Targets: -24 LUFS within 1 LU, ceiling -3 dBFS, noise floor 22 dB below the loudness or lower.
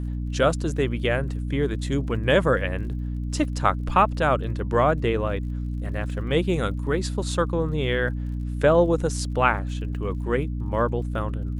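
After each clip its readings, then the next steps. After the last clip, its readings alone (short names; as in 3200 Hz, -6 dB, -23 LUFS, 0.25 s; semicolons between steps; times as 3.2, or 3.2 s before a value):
ticks 41/s; hum 60 Hz; harmonics up to 300 Hz; hum level -26 dBFS; loudness -24.5 LUFS; peak -4.0 dBFS; loudness target -24.0 LUFS
-> de-click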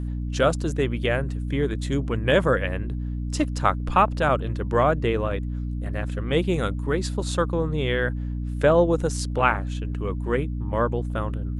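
ticks 0/s; hum 60 Hz; harmonics up to 300 Hz; hum level -26 dBFS
-> de-hum 60 Hz, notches 5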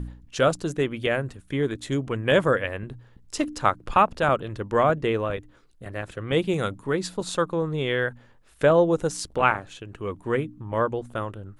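hum none; loudness -25.0 LUFS; peak -4.5 dBFS; loudness target -24.0 LUFS
-> gain +1 dB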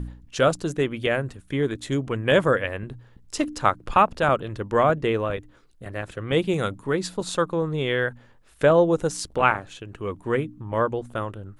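loudness -24.0 LUFS; peak -3.5 dBFS; noise floor -54 dBFS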